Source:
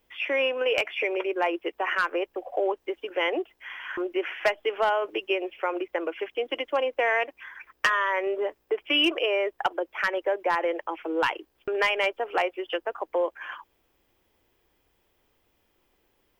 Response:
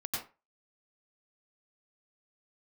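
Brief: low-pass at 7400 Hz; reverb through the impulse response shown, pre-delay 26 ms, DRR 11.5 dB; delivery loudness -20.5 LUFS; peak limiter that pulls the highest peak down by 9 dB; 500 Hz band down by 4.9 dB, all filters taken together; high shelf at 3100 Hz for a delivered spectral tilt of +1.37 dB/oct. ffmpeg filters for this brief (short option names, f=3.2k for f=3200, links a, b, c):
-filter_complex "[0:a]lowpass=7.4k,equalizer=f=500:t=o:g=-6,highshelf=f=3.1k:g=-3.5,alimiter=limit=-21dB:level=0:latency=1,asplit=2[a][b];[1:a]atrim=start_sample=2205,adelay=26[c];[b][c]afir=irnorm=-1:irlink=0,volume=-14.5dB[d];[a][d]amix=inputs=2:normalize=0,volume=11.5dB"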